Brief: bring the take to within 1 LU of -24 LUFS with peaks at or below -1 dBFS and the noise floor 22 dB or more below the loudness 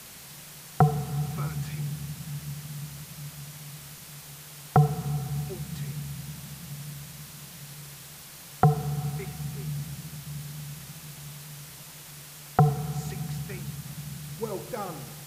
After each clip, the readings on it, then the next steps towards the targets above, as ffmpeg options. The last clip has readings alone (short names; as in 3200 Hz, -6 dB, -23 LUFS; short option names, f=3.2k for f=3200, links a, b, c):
noise floor -46 dBFS; noise floor target -54 dBFS; loudness -31.5 LUFS; peak -10.0 dBFS; loudness target -24.0 LUFS
-> -af "afftdn=nr=8:nf=-46"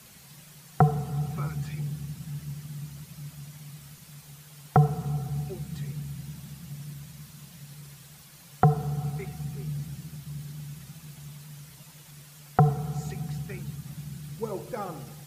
noise floor -51 dBFS; noise floor target -53 dBFS
-> -af "afftdn=nr=6:nf=-51"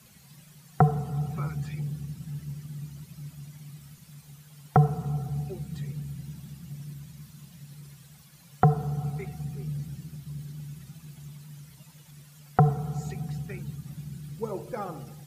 noise floor -54 dBFS; loudness -30.5 LUFS; peak -10.0 dBFS; loudness target -24.0 LUFS
-> -af "volume=6.5dB"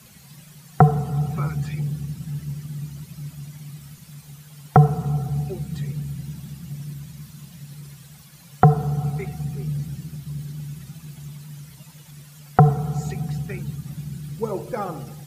loudness -24.0 LUFS; peak -3.5 dBFS; noise floor -47 dBFS